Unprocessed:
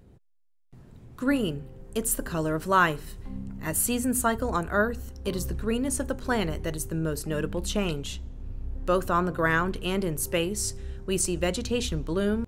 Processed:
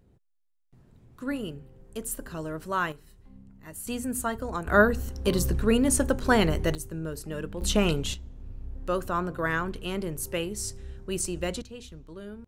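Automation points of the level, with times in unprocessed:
−7 dB
from 0:02.92 −14 dB
from 0:03.87 −5 dB
from 0:04.67 +5 dB
from 0:06.75 −5.5 dB
from 0:07.61 +4 dB
from 0:08.14 −4 dB
from 0:11.62 −15.5 dB

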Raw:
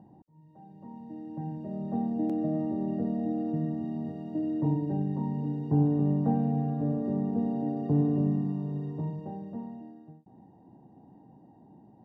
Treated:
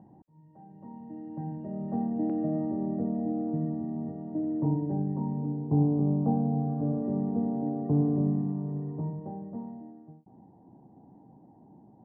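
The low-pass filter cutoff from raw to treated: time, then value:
low-pass filter 24 dB per octave
0:02.44 2,100 Hz
0:03.04 1,400 Hz
0:05.11 1,400 Hz
0:05.74 1,100 Hz
0:06.49 1,100 Hz
0:06.99 1,400 Hz

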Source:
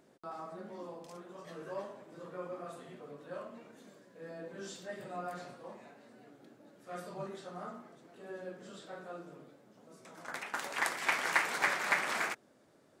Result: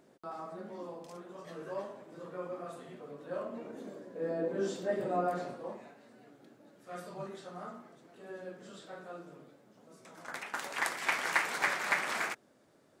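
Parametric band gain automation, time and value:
parametric band 390 Hz 2.9 octaves
0:03.13 +2 dB
0:03.77 +13.5 dB
0:05.12 +13.5 dB
0:05.72 +7 dB
0:05.96 −0.5 dB

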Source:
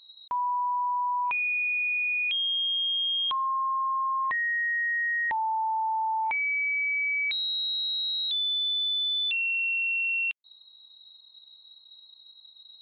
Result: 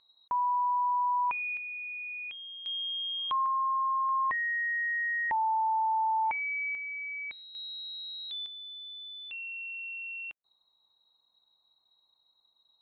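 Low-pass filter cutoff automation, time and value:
1,800 Hz
from 0:01.57 1,300 Hz
from 0:02.66 2,300 Hz
from 0:03.46 1,400 Hz
from 0:04.09 1,800 Hz
from 0:06.75 1,300 Hz
from 0:07.55 2,100 Hz
from 0:08.46 1,400 Hz

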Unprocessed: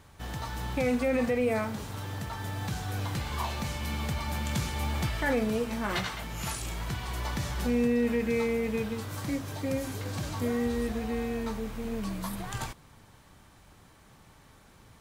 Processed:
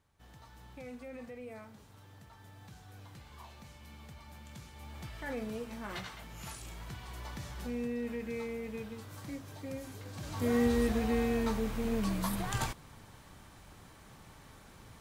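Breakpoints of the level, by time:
0:04.72 −19 dB
0:05.40 −10.5 dB
0:10.15 −10.5 dB
0:10.56 +1.5 dB

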